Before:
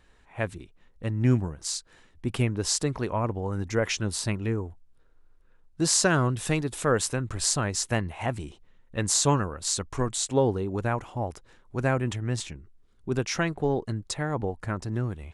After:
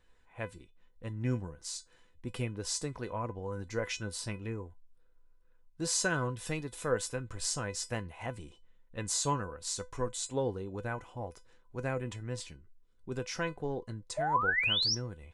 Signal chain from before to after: painted sound rise, 14.17–14.95 s, 590–6000 Hz -21 dBFS; feedback comb 500 Hz, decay 0.17 s, harmonics all, mix 80%; trim +2 dB

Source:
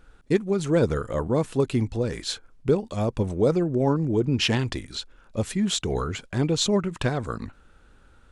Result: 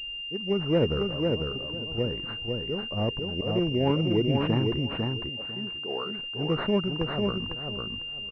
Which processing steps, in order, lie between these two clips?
4.79–6.17 s: high-pass 410 Hz 12 dB/octave; slow attack 192 ms; level-controlled noise filter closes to 970 Hz, open at -19.5 dBFS; 1.04–1.98 s: compression 10:1, threshold -33 dBFS, peak gain reduction 11.5 dB; feedback delay 500 ms, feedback 20%, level -3.5 dB; class-D stage that switches slowly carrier 2.8 kHz; trim -2.5 dB

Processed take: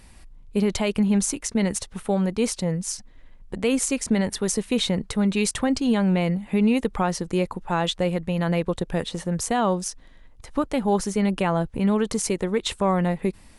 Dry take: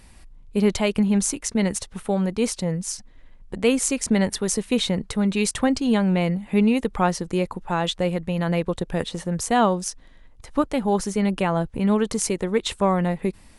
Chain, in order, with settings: peak limiter -12 dBFS, peak gain reduction 5.5 dB

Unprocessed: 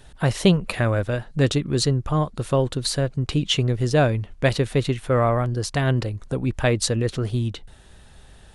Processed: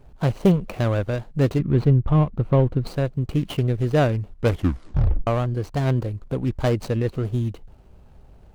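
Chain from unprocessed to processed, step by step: median filter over 25 samples; 1.59–2.87 s: tone controls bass +6 dB, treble -14 dB; 4.34 s: tape stop 0.93 s

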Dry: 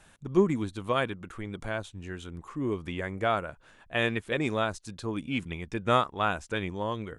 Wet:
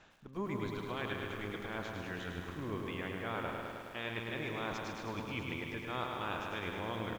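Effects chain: spectral peaks clipped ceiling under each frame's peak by 12 dB; reverse; compression 4:1, threshold -36 dBFS, peak gain reduction 16.5 dB; reverse; resampled via 16 kHz; distance through air 110 m; on a send: feedback delay 149 ms, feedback 33%, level -8 dB; on the sum: bit-crushed delay 105 ms, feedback 80%, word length 10-bit, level -5 dB; trim -2 dB

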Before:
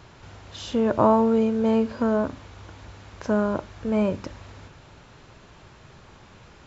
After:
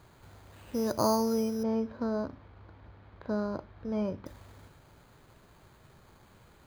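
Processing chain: careless resampling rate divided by 8×, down filtered, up hold; 1.63–4.26 s: distance through air 300 m; trim -8.5 dB

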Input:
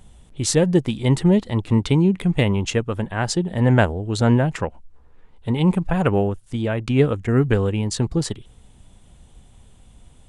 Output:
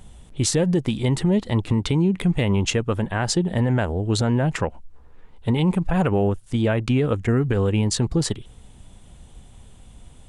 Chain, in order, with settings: compression, threshold -16 dBFS, peak gain reduction 6.5 dB; peak limiter -14.5 dBFS, peak gain reduction 7 dB; trim +3 dB

